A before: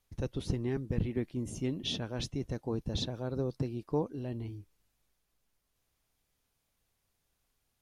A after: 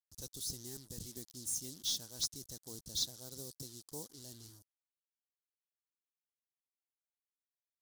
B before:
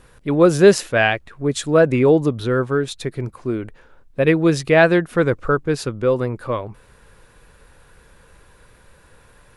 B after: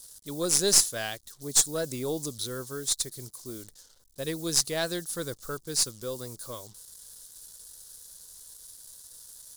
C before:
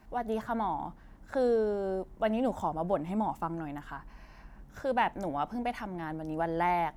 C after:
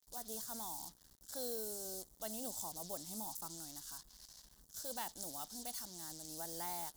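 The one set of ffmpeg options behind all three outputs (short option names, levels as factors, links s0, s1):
-af "acrusher=bits=7:mix=0:aa=0.5,aexciter=amount=11.6:drive=9.3:freq=3900,aeval=exprs='6.68*(cos(1*acos(clip(val(0)/6.68,-1,1)))-cos(1*PI/2))+0.531*(cos(6*acos(clip(val(0)/6.68,-1,1)))-cos(6*PI/2))':c=same,volume=0.126"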